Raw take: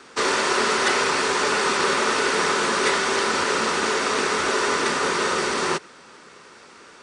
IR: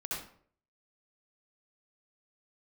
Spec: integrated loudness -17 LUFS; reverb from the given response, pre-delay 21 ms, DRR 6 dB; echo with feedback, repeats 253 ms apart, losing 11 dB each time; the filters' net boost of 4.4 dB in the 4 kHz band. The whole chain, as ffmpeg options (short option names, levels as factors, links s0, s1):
-filter_complex "[0:a]equalizer=f=4000:t=o:g=5.5,aecho=1:1:253|506|759:0.282|0.0789|0.0221,asplit=2[s0][s1];[1:a]atrim=start_sample=2205,adelay=21[s2];[s1][s2]afir=irnorm=-1:irlink=0,volume=0.355[s3];[s0][s3]amix=inputs=2:normalize=0,volume=1.19"